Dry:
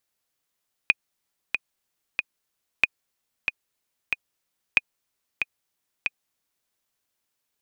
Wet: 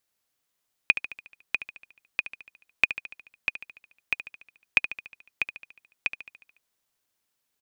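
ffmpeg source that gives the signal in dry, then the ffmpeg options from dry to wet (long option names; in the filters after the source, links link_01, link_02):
-f lavfi -i "aevalsrc='pow(10,(-3.5-7*gte(mod(t,3*60/93),60/93))/20)*sin(2*PI*2480*mod(t,60/93))*exp(-6.91*mod(t,60/93)/0.03)':duration=5.8:sample_rate=44100"
-af "aecho=1:1:72|144|216|288|360|432|504:0.251|0.148|0.0874|0.0516|0.0304|0.018|0.0106"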